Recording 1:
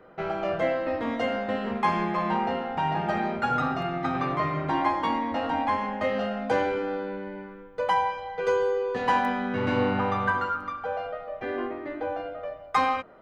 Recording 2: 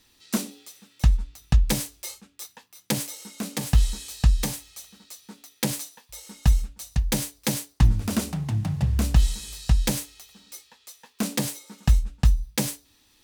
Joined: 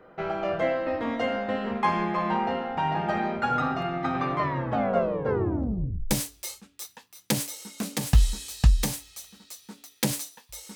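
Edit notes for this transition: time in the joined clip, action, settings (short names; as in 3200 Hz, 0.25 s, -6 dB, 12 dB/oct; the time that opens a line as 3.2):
recording 1
4.38 tape stop 1.73 s
6.11 switch to recording 2 from 1.71 s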